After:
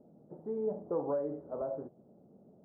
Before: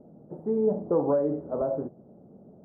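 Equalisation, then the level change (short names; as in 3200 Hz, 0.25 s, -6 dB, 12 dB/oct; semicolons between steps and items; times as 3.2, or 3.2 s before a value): dynamic EQ 220 Hz, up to -4 dB, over -39 dBFS, Q 0.89; low shelf 86 Hz -7 dB; -7.5 dB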